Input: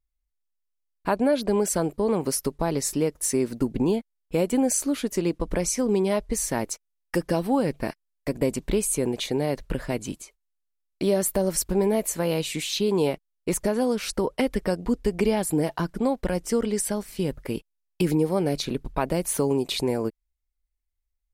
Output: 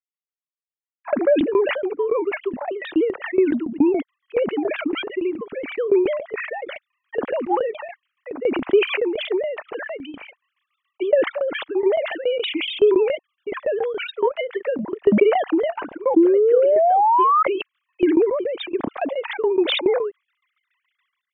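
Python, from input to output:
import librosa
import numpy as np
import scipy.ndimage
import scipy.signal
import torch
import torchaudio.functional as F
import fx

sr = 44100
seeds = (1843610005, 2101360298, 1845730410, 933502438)

y = fx.sine_speech(x, sr)
y = fx.tremolo_shape(y, sr, shape='saw_down', hz=7.1, depth_pct=85)
y = fx.spec_paint(y, sr, seeds[0], shape='rise', start_s=16.16, length_s=1.27, low_hz=320.0, high_hz=1300.0, level_db=-17.0)
y = fx.transient(y, sr, attack_db=6, sustain_db=-3)
y = fx.sustainer(y, sr, db_per_s=49.0)
y = F.gain(torch.from_numpy(y), 1.5).numpy()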